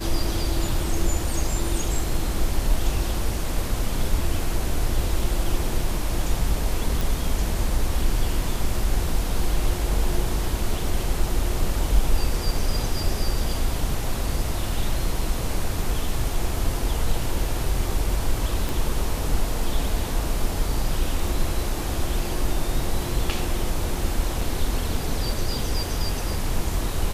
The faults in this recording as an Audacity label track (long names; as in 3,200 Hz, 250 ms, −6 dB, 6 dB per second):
7.010000	7.010000	click
18.690000	18.690000	click
24.410000	24.410000	drop-out 3.9 ms